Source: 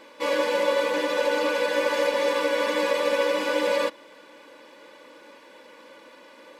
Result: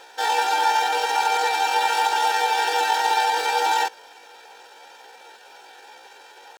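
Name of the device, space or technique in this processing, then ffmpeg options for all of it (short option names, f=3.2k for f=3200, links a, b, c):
chipmunk voice: -af "asetrate=70004,aresample=44100,atempo=0.629961,volume=3dB"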